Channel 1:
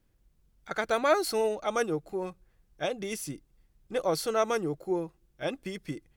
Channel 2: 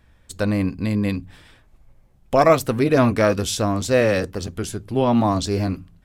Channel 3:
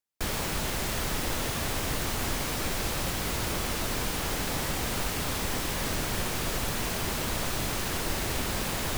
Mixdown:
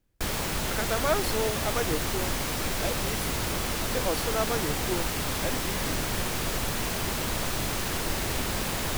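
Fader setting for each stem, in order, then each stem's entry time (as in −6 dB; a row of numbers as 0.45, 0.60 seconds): −2.5 dB, muted, +1.0 dB; 0.00 s, muted, 0.00 s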